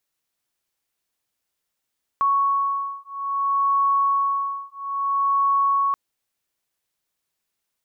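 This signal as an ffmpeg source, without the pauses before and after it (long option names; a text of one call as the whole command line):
ffmpeg -f lavfi -i "aevalsrc='0.0794*(sin(2*PI*1110*t)+sin(2*PI*1110.6*t))':duration=3.73:sample_rate=44100" out.wav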